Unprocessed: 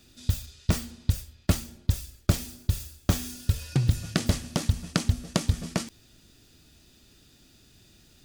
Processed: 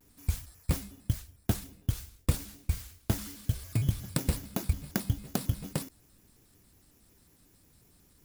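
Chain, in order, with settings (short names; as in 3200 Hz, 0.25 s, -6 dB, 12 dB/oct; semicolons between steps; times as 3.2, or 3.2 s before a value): FFT order left unsorted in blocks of 16 samples; shaped vibrato square 5.5 Hz, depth 250 cents; gain -5 dB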